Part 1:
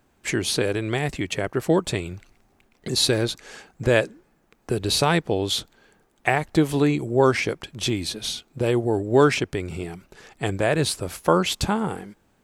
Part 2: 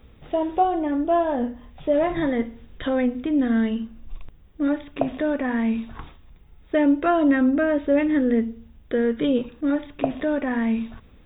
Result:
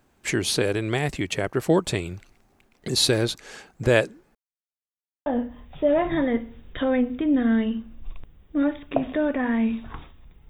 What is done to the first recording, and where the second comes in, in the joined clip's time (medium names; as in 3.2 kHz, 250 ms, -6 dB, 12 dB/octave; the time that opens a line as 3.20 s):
part 1
4.35–5.26 s: mute
5.26 s: go over to part 2 from 1.31 s